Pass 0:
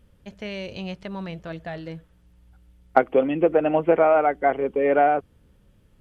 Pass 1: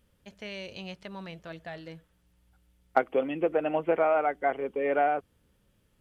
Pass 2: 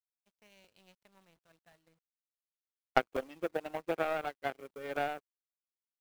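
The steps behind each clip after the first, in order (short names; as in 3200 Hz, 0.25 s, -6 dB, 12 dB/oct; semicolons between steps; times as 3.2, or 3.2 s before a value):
tilt +1.5 dB/oct; gain -6 dB
requantised 8-bit, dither none; power-law curve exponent 2; crackling interface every 0.36 s, samples 128, repeat, from 0.64; gain +1.5 dB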